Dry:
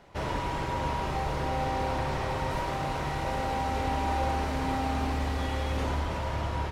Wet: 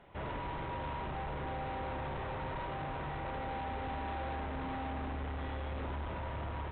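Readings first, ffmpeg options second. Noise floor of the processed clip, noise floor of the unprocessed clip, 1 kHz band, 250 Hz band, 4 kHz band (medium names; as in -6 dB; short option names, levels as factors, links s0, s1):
-40 dBFS, -32 dBFS, -9.0 dB, -9.0 dB, -12.0 dB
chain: -filter_complex "[0:a]acrossover=split=2700[s0][s1];[s1]acompressor=threshold=0.002:ratio=4:attack=1:release=60[s2];[s0][s2]amix=inputs=2:normalize=0,aresample=8000,asoftclip=type=tanh:threshold=0.0251,aresample=44100,volume=0.668"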